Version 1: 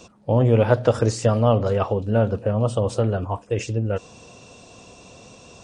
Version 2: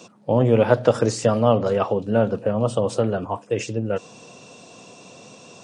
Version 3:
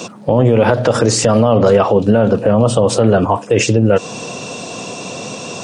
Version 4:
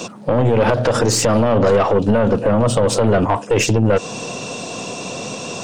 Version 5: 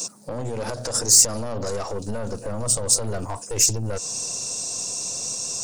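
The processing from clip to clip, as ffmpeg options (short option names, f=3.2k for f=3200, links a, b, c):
-af "highpass=f=130:w=0.5412,highpass=f=130:w=1.3066,volume=1.5dB"
-filter_complex "[0:a]asplit=2[a][b];[b]acompressor=threshold=-27dB:ratio=6,volume=1.5dB[c];[a][c]amix=inputs=2:normalize=0,alimiter=level_in=12dB:limit=-1dB:release=50:level=0:latency=1,volume=-1dB"
-af "aeval=exprs='(tanh(2.51*val(0)+0.3)-tanh(0.3))/2.51':c=same"
-af "asubboost=boost=4.5:cutoff=92,aexciter=amount=12.2:drive=5.7:freq=4.7k,volume=-14.5dB"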